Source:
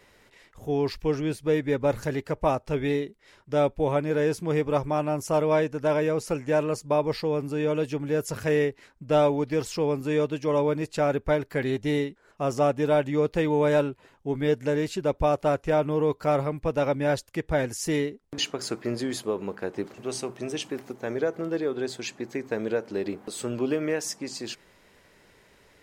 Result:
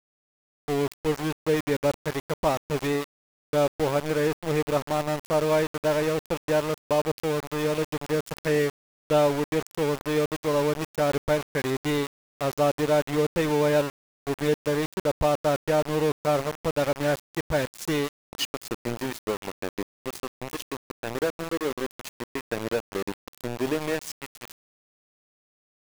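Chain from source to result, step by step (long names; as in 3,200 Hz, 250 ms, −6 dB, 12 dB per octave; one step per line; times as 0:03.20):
centre clipping without the shift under −27 dBFS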